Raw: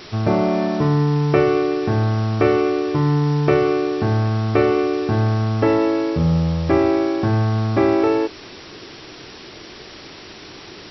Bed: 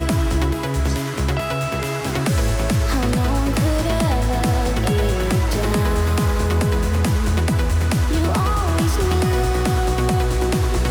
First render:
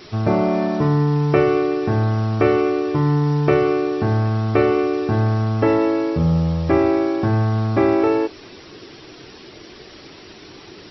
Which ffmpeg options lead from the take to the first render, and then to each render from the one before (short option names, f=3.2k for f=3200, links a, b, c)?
-af "afftdn=nr=6:nf=-39"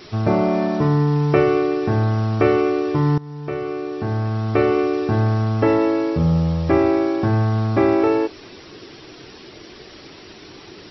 -filter_complex "[0:a]asplit=2[a][b];[a]atrim=end=3.18,asetpts=PTS-STARTPTS,afade=t=out:st=3.176:d=0.004:c=hsin:silence=0.105925[c];[b]atrim=start=3.18,asetpts=PTS-STARTPTS,afade=t=in:d=1.62:silence=0.105925[d];[c][d]concat=n=2:v=0:a=1"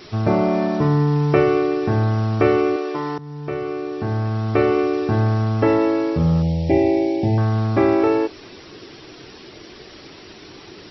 -filter_complex "[0:a]asettb=1/sr,asplit=3[a][b][c];[a]atrim=end=2.764[d];[b]atrim=start=2.76:end=3.19,asetpts=PTS-STARTPTS,afade=t=in:d=0.004:c=qsin,afade=t=out:st=0.426:d=0.004:c=qsin,highpass=400[e];[c]atrim=start=3.186[f];[d][e]acrossfade=d=0.004:c1=hsin:c2=qsin[g];[g][f]acrossfade=d=0.004:c1=qsin:c2=hsin,asettb=1/sr,asplit=3[h][i][j];[h]atrim=end=6.424[k];[i]atrim=start=6.42:end=7.38,asetpts=PTS-STARTPTS,afade=t=in:d=0.004:c=qsin,afade=t=out:st=0.956:d=0.004:c=qsin,asuperstop=centerf=1300:order=8:qfactor=1.2[l];[j]atrim=start=7.376[m];[k][l]acrossfade=d=0.004:c1=hsin:c2=qsin[n];[n][m]acrossfade=d=0.004:c1=qsin:c2=hsin"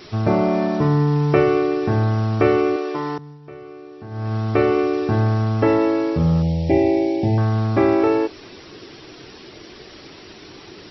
-filter_complex "[0:a]asplit=3[a][b][c];[a]atrim=end=3.39,asetpts=PTS-STARTPTS,afade=t=out:st=3.15:d=0.24:silence=0.251189[d];[b]atrim=start=3.39:end=4.1,asetpts=PTS-STARTPTS,volume=-12dB[e];[c]atrim=start=4.1,asetpts=PTS-STARTPTS,afade=t=in:d=0.24:silence=0.251189[f];[d][e][f]concat=n=3:v=0:a=1"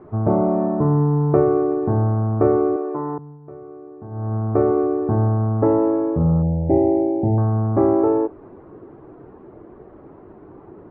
-af "lowpass=f=1.1k:w=0.5412,lowpass=f=1.1k:w=1.3066"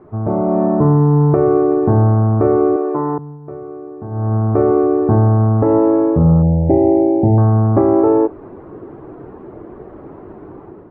-af "alimiter=limit=-10.5dB:level=0:latency=1:release=207,dynaudnorm=f=190:g=5:m=8dB"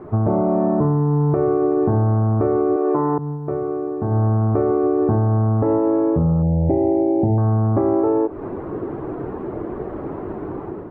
-filter_complex "[0:a]asplit=2[a][b];[b]alimiter=limit=-12.5dB:level=0:latency=1:release=67,volume=1dB[c];[a][c]amix=inputs=2:normalize=0,acompressor=threshold=-15dB:ratio=6"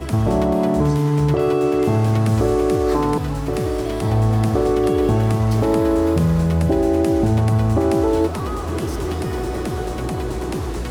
-filter_complex "[1:a]volume=-7.5dB[a];[0:a][a]amix=inputs=2:normalize=0"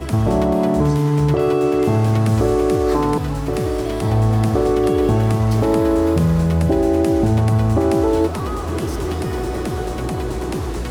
-af "volume=1dB"